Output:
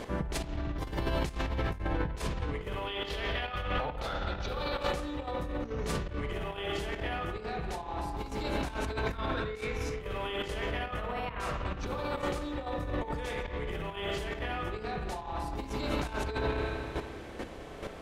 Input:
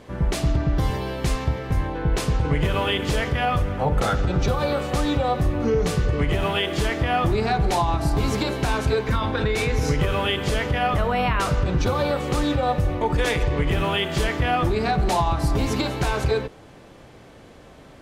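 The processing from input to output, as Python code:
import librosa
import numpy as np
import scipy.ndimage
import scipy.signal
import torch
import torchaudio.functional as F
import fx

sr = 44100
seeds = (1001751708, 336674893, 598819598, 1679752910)

y = fx.graphic_eq_10(x, sr, hz=(125, 250, 4000, 8000), db=(-3, -4, 8, -7), at=(2.86, 4.9))
y = fx.rev_spring(y, sr, rt60_s=2.0, pass_ms=(30, 37), chirp_ms=50, drr_db=0.0)
y = fx.chopper(y, sr, hz=2.3, depth_pct=60, duty_pct=10)
y = fx.peak_eq(y, sr, hz=130.0, db=-6.5, octaves=0.94)
y = fx.over_compress(y, sr, threshold_db=-35.0, ratio=-1.0)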